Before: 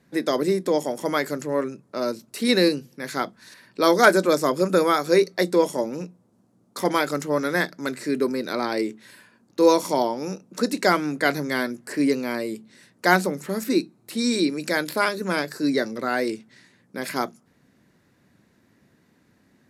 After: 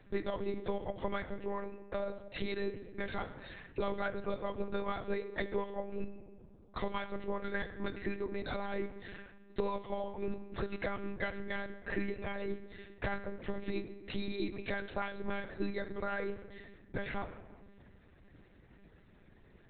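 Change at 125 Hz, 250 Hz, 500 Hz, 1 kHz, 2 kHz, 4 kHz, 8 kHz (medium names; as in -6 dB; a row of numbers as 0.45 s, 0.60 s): -10.5 dB, -16.5 dB, -15.5 dB, -16.5 dB, -15.5 dB, -19.0 dB, under -40 dB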